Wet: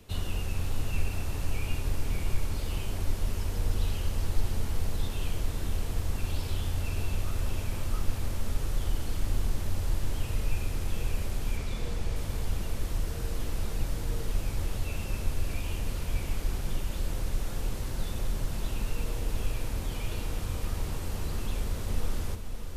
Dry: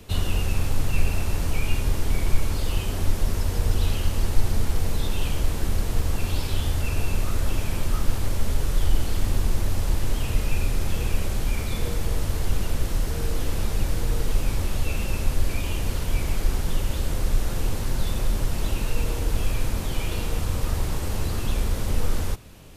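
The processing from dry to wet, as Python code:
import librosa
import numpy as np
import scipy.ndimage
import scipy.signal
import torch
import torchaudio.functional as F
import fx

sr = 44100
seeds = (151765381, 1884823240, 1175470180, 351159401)

y = fx.lowpass(x, sr, hz=7500.0, slope=12, at=(11.57, 12.16))
y = fx.echo_diffused(y, sr, ms=556, feedback_pct=46, wet_db=-8.0)
y = y * librosa.db_to_amplitude(-8.0)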